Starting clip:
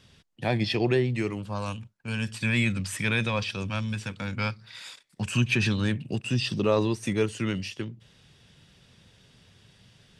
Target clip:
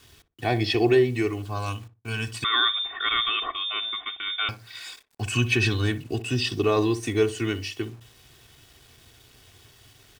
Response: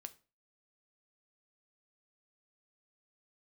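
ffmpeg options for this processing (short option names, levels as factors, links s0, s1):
-filter_complex "[0:a]aecho=1:1:2.7:0.98,acrusher=bits=8:mix=0:aa=0.000001,asplit=2[s0][s1];[s1]adelay=60,lowpass=f=940:p=1,volume=0.282,asplit=2[s2][s3];[s3]adelay=60,lowpass=f=940:p=1,volume=0.25,asplit=2[s4][s5];[s5]adelay=60,lowpass=f=940:p=1,volume=0.25[s6];[s0][s2][s4][s6]amix=inputs=4:normalize=0,asettb=1/sr,asplit=3[s7][s8][s9];[s7]atrim=end=2.444[s10];[s8]atrim=start=2.44:end=4.49,asetpts=PTS-STARTPTS,afade=t=in:d=0.004:c=qsin,afade=t=out:st=2.046:d=0.004:c=qsin,lowpass=f=3100:t=q:w=0.5098,lowpass=f=3100:t=q:w=0.6013,lowpass=f=3100:t=q:w=0.9,lowpass=f=3100:t=q:w=2.563,afreqshift=-3700[s11];[s9]atrim=start=4.486[s12];[s10][s11]acrossfade=d=0.004:c1=hsin:c2=qsin[s13];[s13][s12]acrossfade=d=0.004:c1=qsin:c2=hsin"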